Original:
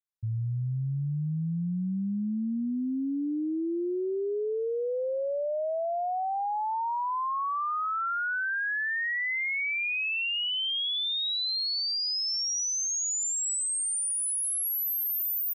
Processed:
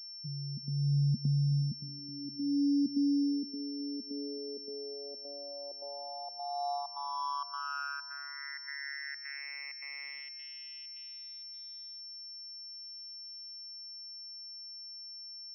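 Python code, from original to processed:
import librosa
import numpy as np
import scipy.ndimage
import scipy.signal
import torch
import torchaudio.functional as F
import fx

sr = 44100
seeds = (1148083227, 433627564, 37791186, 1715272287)

p1 = fx.low_shelf(x, sr, hz=480.0, db=11.0)
p2 = fx.vocoder(p1, sr, bands=16, carrier='saw', carrier_hz=142.0)
p3 = fx.volume_shaper(p2, sr, bpm=105, per_beat=1, depth_db=-21, release_ms=103.0, shape='slow start')
p4 = fx.filter_sweep_bandpass(p3, sr, from_hz=230.0, to_hz=2000.0, start_s=4.98, end_s=8.34, q=6.3)
p5 = p4 + fx.echo_feedback(p4, sr, ms=369, feedback_pct=50, wet_db=-18.5, dry=0)
p6 = fx.pwm(p5, sr, carrier_hz=5400.0)
y = F.gain(torch.from_numpy(p6), 3.5).numpy()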